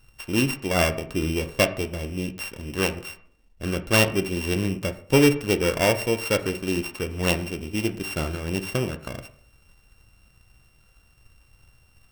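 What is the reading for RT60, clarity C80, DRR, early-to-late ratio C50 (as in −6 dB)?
0.55 s, 17.0 dB, 8.5 dB, 13.5 dB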